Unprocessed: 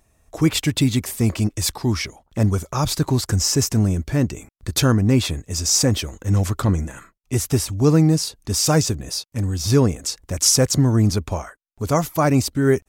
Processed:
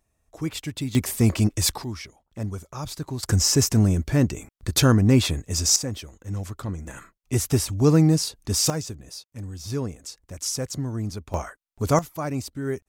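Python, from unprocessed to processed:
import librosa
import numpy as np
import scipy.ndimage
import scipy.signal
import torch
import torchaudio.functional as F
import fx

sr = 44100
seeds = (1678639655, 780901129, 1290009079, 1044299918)

y = fx.gain(x, sr, db=fx.steps((0.0, -11.5), (0.95, 0.0), (1.84, -12.0), (3.23, -0.5), (5.76, -12.0), (6.87, -2.0), (8.7, -12.5), (11.34, -0.5), (11.99, -11.5)))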